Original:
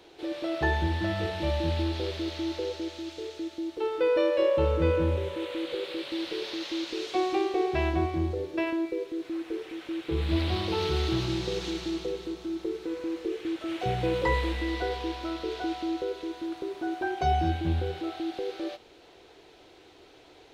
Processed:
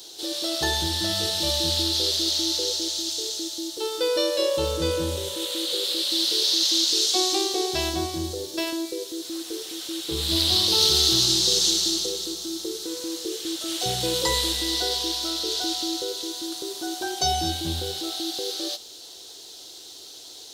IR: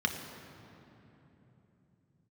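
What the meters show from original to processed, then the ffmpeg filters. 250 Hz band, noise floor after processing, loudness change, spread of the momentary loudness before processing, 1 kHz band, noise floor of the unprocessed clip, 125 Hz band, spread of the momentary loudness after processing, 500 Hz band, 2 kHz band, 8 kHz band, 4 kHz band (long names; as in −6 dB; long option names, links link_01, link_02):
−0.5 dB, −43 dBFS, +7.0 dB, 10 LU, 0.0 dB, −54 dBFS, −4.0 dB, 14 LU, −0.5 dB, 0.0 dB, +25.5 dB, +17.5 dB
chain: -af "lowshelf=frequency=80:gain=-8.5,aexciter=amount=15:drive=5.3:freq=3600"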